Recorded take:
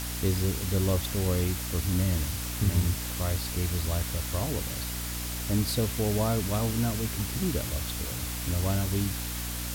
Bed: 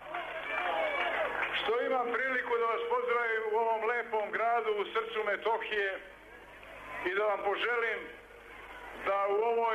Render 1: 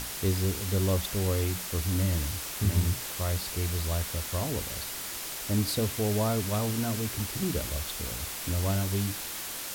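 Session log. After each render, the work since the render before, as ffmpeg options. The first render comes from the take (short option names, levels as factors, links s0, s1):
-af "bandreject=f=60:t=h:w=6,bandreject=f=120:t=h:w=6,bandreject=f=180:t=h:w=6,bandreject=f=240:t=h:w=6,bandreject=f=300:t=h:w=6"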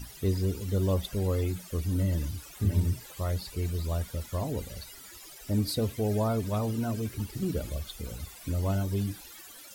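-af "afftdn=nr=17:nf=-37"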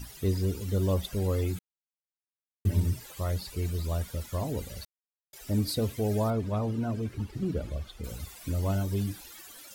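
-filter_complex "[0:a]asettb=1/sr,asplit=3[s0][s1][s2];[s0]atrim=end=6.304[s3];[s1]atrim=start=6.3:end=8.04,asetpts=PTS-STARTPTS,afade=t=in:d=0.004:c=qsin,afade=t=out:st=1.736:d=0.004:c=qsin,aemphasis=mode=reproduction:type=75kf[s4];[s2]atrim=start=8.036[s5];[s3][s4]acrossfade=d=0.004:c1=hsin:c2=qsin[s6];[s6][s5]acrossfade=d=0.004:c1=qsin:c2=hsin,asplit=5[s7][s8][s9][s10][s11];[s7]atrim=end=1.59,asetpts=PTS-STARTPTS,afade=t=out:st=1.586:d=0.004:c=hsin[s12];[s8]atrim=start=1.59:end=2.65,asetpts=PTS-STARTPTS,volume=0[s13];[s9]atrim=start=2.65:end=4.85,asetpts=PTS-STARTPTS,afade=t=in:d=0.004:c=hsin,afade=t=out:st=2.196:d=0.004:c=hsin[s14];[s10]atrim=start=4.85:end=5.33,asetpts=PTS-STARTPTS,volume=0[s15];[s11]atrim=start=5.33,asetpts=PTS-STARTPTS,afade=t=in:d=0.004:c=hsin[s16];[s12][s13][s14][s15][s16]concat=n=5:v=0:a=1"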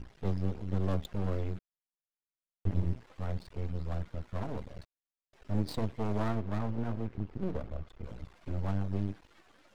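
-af "adynamicsmooth=sensitivity=5.5:basefreq=1700,aeval=exprs='max(val(0),0)':c=same"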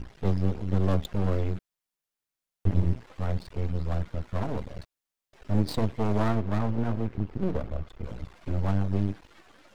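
-af "volume=2.11"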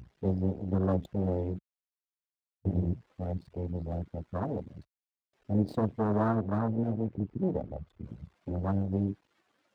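-af "afwtdn=0.0251,highpass=120"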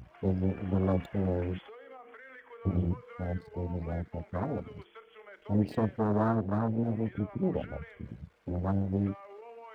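-filter_complex "[1:a]volume=0.112[s0];[0:a][s0]amix=inputs=2:normalize=0"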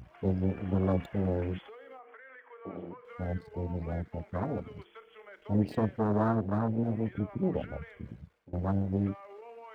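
-filter_complex "[0:a]asettb=1/sr,asplit=3[s0][s1][s2];[s0]atrim=end=1.994[s3];[s1]atrim=start=1.99:end=3.05,asetpts=PTS-STARTPTS,afade=t=in:d=0.004:c=qsin,afade=t=out:st=1.056:d=0.004:c=qsin,highpass=420,lowpass=2300[s4];[s2]atrim=start=3.046[s5];[s3][s4]acrossfade=d=0.004:c1=hsin:c2=qsin[s6];[s6][s5]acrossfade=d=0.004:c1=qsin:c2=hsin,asplit=2[s7][s8];[s7]atrim=end=8.53,asetpts=PTS-STARTPTS,afade=t=out:st=7.91:d=0.62:c=qsin:silence=0.0668344[s9];[s8]atrim=start=8.53,asetpts=PTS-STARTPTS,afade=t=in:d=0.004:c=hsin:silence=0.0668344[s10];[s9][s10]concat=n=2:v=0:a=1"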